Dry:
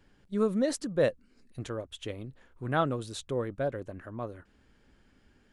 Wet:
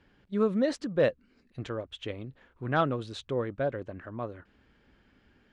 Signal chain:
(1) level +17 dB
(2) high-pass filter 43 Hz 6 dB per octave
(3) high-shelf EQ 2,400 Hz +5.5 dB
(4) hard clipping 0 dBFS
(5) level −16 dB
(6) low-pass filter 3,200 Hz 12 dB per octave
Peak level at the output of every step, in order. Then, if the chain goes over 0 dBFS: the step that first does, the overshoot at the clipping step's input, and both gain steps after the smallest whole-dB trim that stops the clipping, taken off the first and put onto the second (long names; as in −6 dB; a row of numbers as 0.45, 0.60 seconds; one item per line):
+2.5, +3.0, +4.0, 0.0, −16.0, −15.5 dBFS
step 1, 4.0 dB
step 1 +13 dB, step 5 −12 dB